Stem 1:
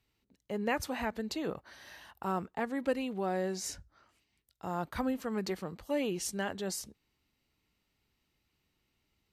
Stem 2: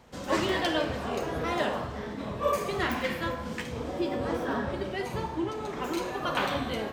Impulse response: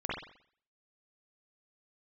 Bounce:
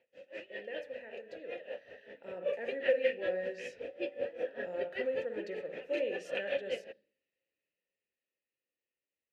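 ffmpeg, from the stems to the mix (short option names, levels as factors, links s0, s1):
-filter_complex "[0:a]bandreject=f=760:w=17,volume=0.447,asplit=2[s0][s1];[s1]volume=0.422[s2];[1:a]equalizer=f=2600:t=o:w=0.54:g=8.5,aeval=exprs='val(0)*pow(10,-21*(0.5-0.5*cos(2*PI*5.2*n/s))/20)':c=same,volume=0.631[s3];[2:a]atrim=start_sample=2205[s4];[s2][s4]afir=irnorm=-1:irlink=0[s5];[s0][s3][s5]amix=inputs=3:normalize=0,dynaudnorm=f=220:g=21:m=3.35,asplit=3[s6][s7][s8];[s6]bandpass=f=530:t=q:w=8,volume=1[s9];[s7]bandpass=f=1840:t=q:w=8,volume=0.501[s10];[s8]bandpass=f=2480:t=q:w=8,volume=0.355[s11];[s9][s10][s11]amix=inputs=3:normalize=0"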